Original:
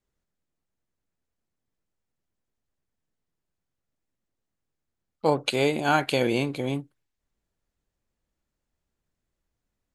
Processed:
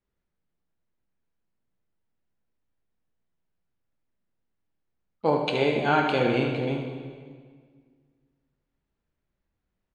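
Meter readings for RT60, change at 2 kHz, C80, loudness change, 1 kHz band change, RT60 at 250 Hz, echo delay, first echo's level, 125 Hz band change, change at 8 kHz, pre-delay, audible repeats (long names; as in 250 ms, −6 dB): 1.7 s, 0.0 dB, 6.0 dB, +0.5 dB, +1.0 dB, 2.0 s, 75 ms, −8.5 dB, +1.0 dB, below −10 dB, 14 ms, 1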